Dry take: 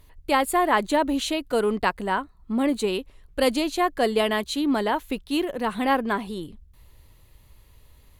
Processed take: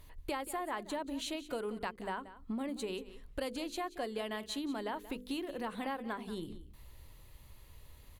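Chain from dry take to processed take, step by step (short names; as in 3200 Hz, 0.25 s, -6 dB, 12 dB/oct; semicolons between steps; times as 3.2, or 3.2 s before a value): notches 50/100/150/200/250/300/350/400/450/500 Hz; compressor 6:1, threshold -35 dBFS, peak gain reduction 18 dB; on a send: echo 0.181 s -15.5 dB; on the sum: gain -1.5 dB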